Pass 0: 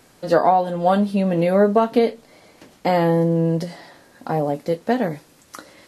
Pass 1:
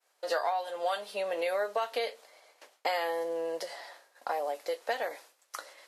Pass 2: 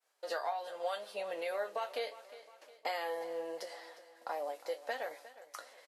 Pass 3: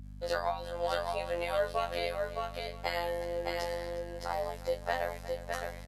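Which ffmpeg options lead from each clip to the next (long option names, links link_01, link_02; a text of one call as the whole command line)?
ffmpeg -i in.wav -filter_complex "[0:a]highpass=frequency=530:width=0.5412,highpass=frequency=530:width=1.3066,agate=range=-33dB:threshold=-45dB:ratio=3:detection=peak,acrossover=split=1700[link_01][link_02];[link_01]acompressor=threshold=-27dB:ratio=6[link_03];[link_03][link_02]amix=inputs=2:normalize=0,volume=-2.5dB" out.wav
ffmpeg -i in.wav -af "flanger=delay=5.8:depth=5.3:regen=66:speed=0.77:shape=triangular,aecho=1:1:358|716|1074|1432:0.15|0.0718|0.0345|0.0165,volume=-2dB" out.wav
ffmpeg -i in.wav -af "aecho=1:1:614:0.668,afftfilt=real='hypot(re,im)*cos(PI*b)':imag='0':win_size=2048:overlap=0.75,aeval=exprs='val(0)+0.00251*(sin(2*PI*50*n/s)+sin(2*PI*2*50*n/s)/2+sin(2*PI*3*50*n/s)/3+sin(2*PI*4*50*n/s)/4+sin(2*PI*5*50*n/s)/5)':channel_layout=same,volume=7.5dB" out.wav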